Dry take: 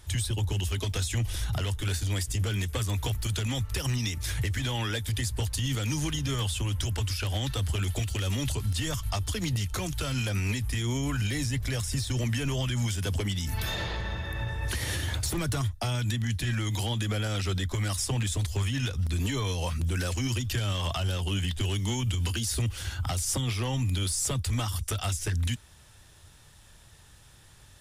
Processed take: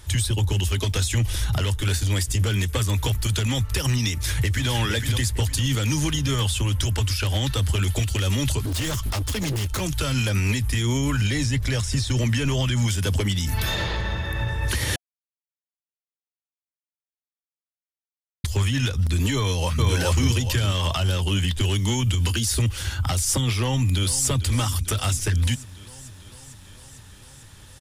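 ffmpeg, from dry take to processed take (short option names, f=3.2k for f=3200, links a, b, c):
-filter_complex "[0:a]asplit=2[a][b];[b]afade=t=in:st=4.13:d=0.01,afade=t=out:st=4.71:d=0.01,aecho=0:1:460|920|1380|1840:0.501187|0.150356|0.0451069|0.0135321[c];[a][c]amix=inputs=2:normalize=0,asettb=1/sr,asplit=3[d][e][f];[d]atrim=end=8.604[g];[e]atrim=start=8.6:end=9.81,asetpts=PTS-STARTPTS,afade=t=in:d=0.004:c=qsin,afade=t=out:st=1.206:d=0.004:c=qsin,aeval=exprs='0.0447*(abs(mod(val(0)/0.0447+3,4)-2)-1)':c=same[h];[f]atrim=start=9.806[i];[g][h]acrossfade=d=0.004:c1=hsin:c2=qsin[j];[j][i]acrossfade=d=0.004:c1=qsin:c2=hsin,asettb=1/sr,asplit=3[k][l][m];[k]atrim=end=11.164[n];[l]atrim=start=11.16:end=12.88,asetpts=PTS-STARTPTS,afade=t=in:d=0.004:c=qsin,afade=t=out:st=1.716:d=0.004:c=qsin,acrossover=split=8900[o][p];[p]acompressor=threshold=-55dB:ratio=4:attack=1:release=60[q];[o][q]amix=inputs=2:normalize=0[r];[m]atrim=start=12.876[s];[n][r]acrossfade=d=0.004:c1=hsin:c2=qsin[t];[t][s]acrossfade=d=0.004:c1=qsin:c2=hsin,asplit=2[u][v];[v]afade=t=in:st=19.36:d=0.01,afade=t=out:st=19.89:d=0.01,aecho=0:1:420|840|1260|1680|2100:0.891251|0.311938|0.109178|0.0382124|0.0133743[w];[u][w]amix=inputs=2:normalize=0,asplit=2[x][y];[y]afade=t=in:st=23.58:d=0.01,afade=t=out:st=24.29:d=0.01,aecho=0:1:450|900|1350|1800|2250|2700|3150|3600|4050|4500|4950:0.188365|0.141274|0.105955|0.0794664|0.0595998|0.0446999|0.0335249|0.0251437|0.0188578|0.0141433|0.0106075[z];[x][z]amix=inputs=2:normalize=0,asplit=3[aa][ab][ac];[aa]atrim=end=14.96,asetpts=PTS-STARTPTS,afade=t=out:st=14.956:d=0.004:c=hsin[ad];[ab]atrim=start=14.96:end=18.44,asetpts=PTS-STARTPTS,volume=0[ae];[ac]atrim=start=18.44,asetpts=PTS-STARTPTS,afade=t=in:d=0.004:c=hsin[af];[ad][ae][af]concat=n=3:v=0:a=1,bandreject=f=710:w=12,volume=6.5dB"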